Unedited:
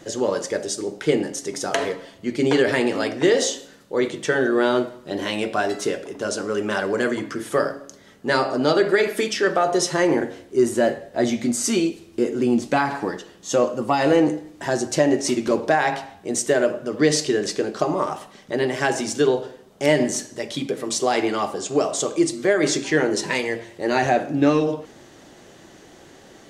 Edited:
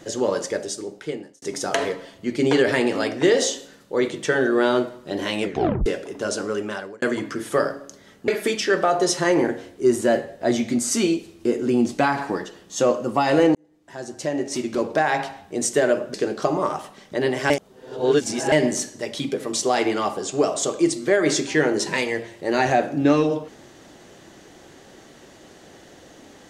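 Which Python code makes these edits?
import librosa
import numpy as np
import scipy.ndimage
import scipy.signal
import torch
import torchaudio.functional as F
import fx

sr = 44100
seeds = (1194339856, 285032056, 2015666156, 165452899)

y = fx.edit(x, sr, fx.fade_out_span(start_s=0.44, length_s=0.98),
    fx.tape_stop(start_s=5.43, length_s=0.43),
    fx.fade_out_span(start_s=6.45, length_s=0.57),
    fx.cut(start_s=8.28, length_s=0.73),
    fx.fade_in_span(start_s=14.28, length_s=1.75),
    fx.cut(start_s=16.87, length_s=0.64),
    fx.reverse_span(start_s=18.87, length_s=1.02), tone=tone)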